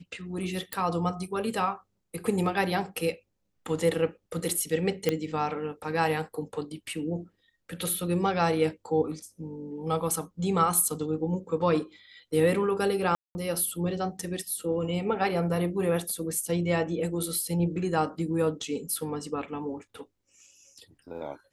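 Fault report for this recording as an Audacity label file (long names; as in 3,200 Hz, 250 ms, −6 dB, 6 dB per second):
0.730000	0.730000	click −13 dBFS
5.090000	5.090000	click −11 dBFS
13.150000	13.350000	drop-out 200 ms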